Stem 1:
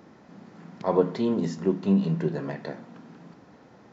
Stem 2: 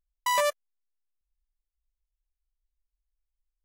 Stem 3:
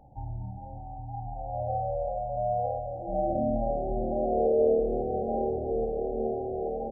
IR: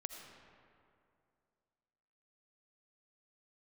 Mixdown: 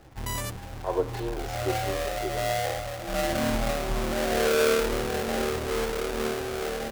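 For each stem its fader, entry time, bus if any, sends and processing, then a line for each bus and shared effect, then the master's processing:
-4.0 dB, 0.00 s, no send, elliptic high-pass 310 Hz
-12.5 dB, 0.00 s, no send, tilt +3.5 dB/oct
-2.5 dB, 0.00 s, no send, half-waves squared off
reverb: off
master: dry

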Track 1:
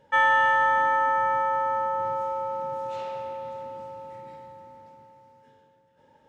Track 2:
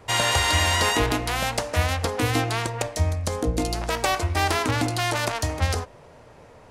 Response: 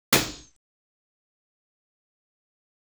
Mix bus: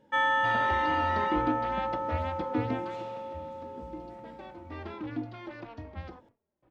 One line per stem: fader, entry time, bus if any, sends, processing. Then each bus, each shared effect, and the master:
-6.0 dB, 0.00 s, no send, dry
2.82 s -10 dB -> 3.07 s -22.5 dB -> 4.53 s -22.5 dB -> 4.75 s -16 dB, 0.35 s, no send, Gaussian blur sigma 2.7 samples; gate with hold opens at -38 dBFS; endless flanger 3.5 ms -1.9 Hz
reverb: off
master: bell 280 Hz +7 dB 0.49 oct; small resonant body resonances 210/330/3400 Hz, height 8 dB, ringing for 45 ms

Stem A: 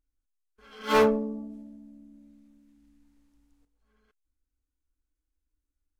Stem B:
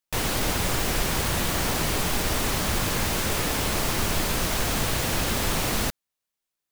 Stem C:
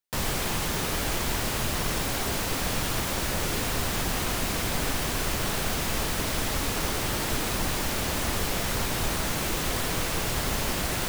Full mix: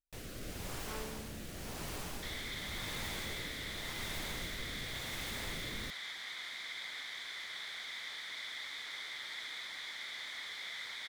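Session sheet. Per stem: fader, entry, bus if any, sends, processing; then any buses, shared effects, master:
-18.5 dB, 0.00 s, no send, compressor, threshold -26 dBFS, peak gain reduction 8.5 dB
-16.5 dB, 0.00 s, no send, rotary speaker horn 0.9 Hz
-3.5 dB, 2.10 s, no send, double band-pass 2700 Hz, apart 0.74 oct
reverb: off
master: dry

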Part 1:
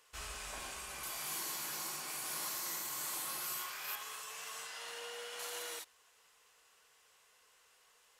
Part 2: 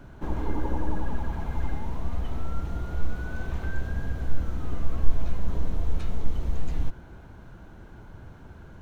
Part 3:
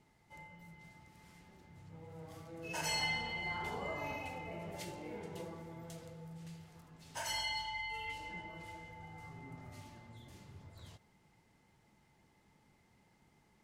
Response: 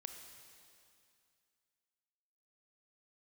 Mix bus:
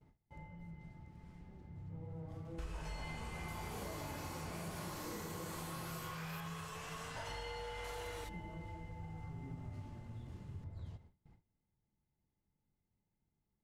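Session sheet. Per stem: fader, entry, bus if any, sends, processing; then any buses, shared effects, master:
-2.0 dB, 2.45 s, send -12.5 dB, sample leveller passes 1
off
-5.5 dB, 0.00 s, send -5.5 dB, dry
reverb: on, RT60 2.4 s, pre-delay 23 ms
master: gate with hold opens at -60 dBFS; tilt -3.5 dB/oct; compressor 6:1, threshold -41 dBFS, peak gain reduction 11.5 dB

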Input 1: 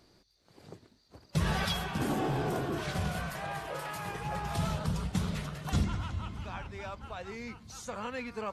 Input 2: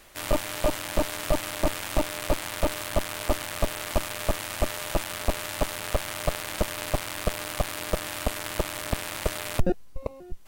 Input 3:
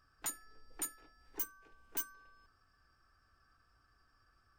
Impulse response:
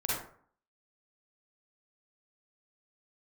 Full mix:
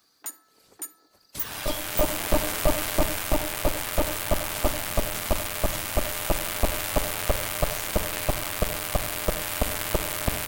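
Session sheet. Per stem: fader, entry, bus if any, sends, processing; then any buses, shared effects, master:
-6.5 dB, 0.00 s, no send, tilt +3.5 dB/oct; whisperiser; soft clip -22.5 dBFS, distortion -21 dB
-8.0 dB, 1.35 s, send -14 dB, AGC
+1.0 dB, 0.00 s, send -20 dB, Wiener smoothing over 15 samples; Chebyshev high-pass 260 Hz, order 2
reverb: on, RT60 0.55 s, pre-delay 37 ms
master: high shelf 12000 Hz +10.5 dB

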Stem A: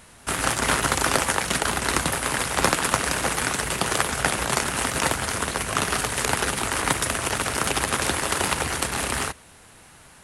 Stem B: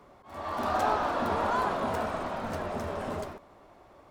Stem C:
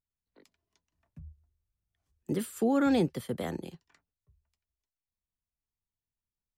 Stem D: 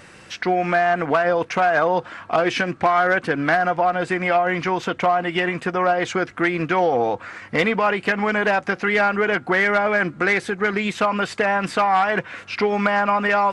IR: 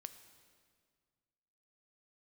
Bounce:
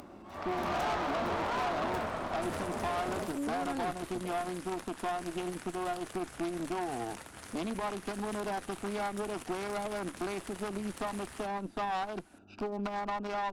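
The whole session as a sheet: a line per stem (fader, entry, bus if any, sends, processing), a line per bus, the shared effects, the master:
-11.0 dB, 2.15 s, no send, compressor 5:1, threshold -30 dBFS, peak gain reduction 14 dB
+1.0 dB, 0.00 s, no send, dry
-7.5 dB, 0.85 s, no send, dry
-5.5 dB, 0.00 s, no send, Wiener smoothing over 41 samples; fixed phaser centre 500 Hz, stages 6; three-band squash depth 40%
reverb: off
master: upward compressor, threshold -40 dBFS; tube stage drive 29 dB, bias 0.75

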